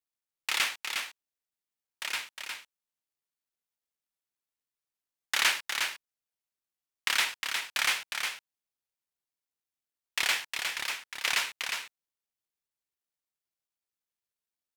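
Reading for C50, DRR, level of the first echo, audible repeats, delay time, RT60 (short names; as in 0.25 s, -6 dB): none, none, -5.5 dB, 1, 0.359 s, none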